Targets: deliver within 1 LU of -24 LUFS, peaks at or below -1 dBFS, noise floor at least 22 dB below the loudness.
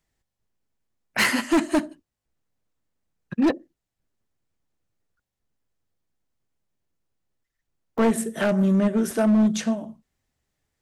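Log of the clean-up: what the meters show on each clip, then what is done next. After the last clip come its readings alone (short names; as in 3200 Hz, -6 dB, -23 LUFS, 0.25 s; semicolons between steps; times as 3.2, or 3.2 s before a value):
clipped 1.8%; flat tops at -15.0 dBFS; dropouts 3; longest dropout 1.8 ms; loudness -22.5 LUFS; peak -15.0 dBFS; loudness target -24.0 LUFS
-> clip repair -15 dBFS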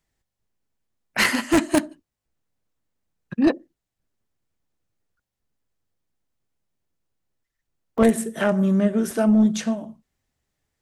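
clipped 0.0%; dropouts 3; longest dropout 1.8 ms
-> interpolate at 1.24/7.98/9.11, 1.8 ms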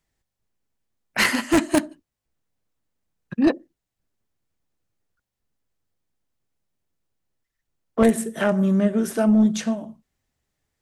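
dropouts 0; loudness -21.0 LUFS; peak -6.0 dBFS; loudness target -24.0 LUFS
-> gain -3 dB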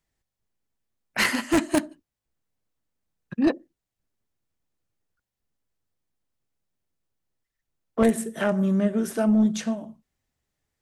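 loudness -24.0 LUFS; peak -9.0 dBFS; noise floor -86 dBFS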